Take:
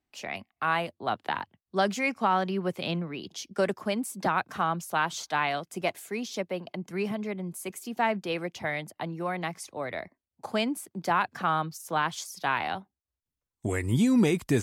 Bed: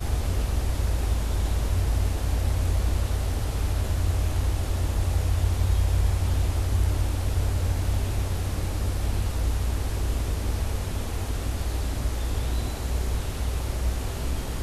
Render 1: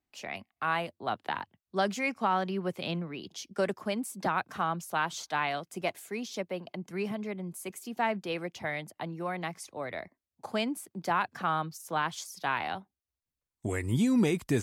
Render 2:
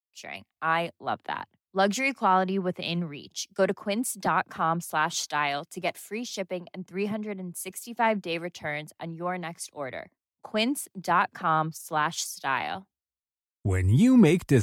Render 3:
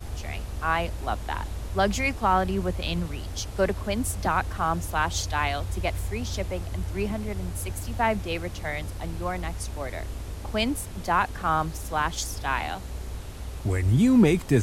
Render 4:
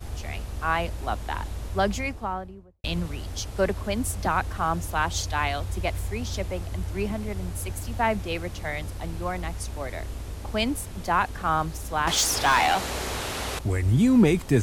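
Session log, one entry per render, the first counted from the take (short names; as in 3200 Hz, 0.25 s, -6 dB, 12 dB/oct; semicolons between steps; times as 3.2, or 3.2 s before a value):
gain -3 dB
in parallel at 0 dB: limiter -26.5 dBFS, peak gain reduction 10.5 dB; on the sum: three-band expander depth 100%
add bed -8.5 dB
1.67–2.84 studio fade out; 12.07–13.59 overdrive pedal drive 24 dB, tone 6200 Hz, clips at -12 dBFS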